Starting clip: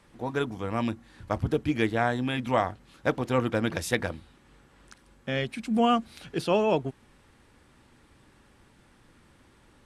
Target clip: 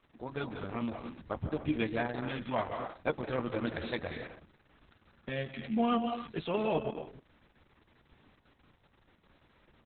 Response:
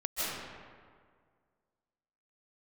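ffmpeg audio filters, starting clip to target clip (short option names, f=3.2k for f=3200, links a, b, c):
-filter_complex "[0:a]asplit=2[a][b];[b]adelay=13,volume=-9.5dB[c];[a][c]amix=inputs=2:normalize=0,asplit=2[d][e];[1:a]atrim=start_sample=2205,afade=t=out:st=0.37:d=0.01,atrim=end_sample=16758[f];[e][f]afir=irnorm=-1:irlink=0,volume=-11.5dB[g];[d][g]amix=inputs=2:normalize=0,volume=-8dB" -ar 48000 -c:a libopus -b:a 6k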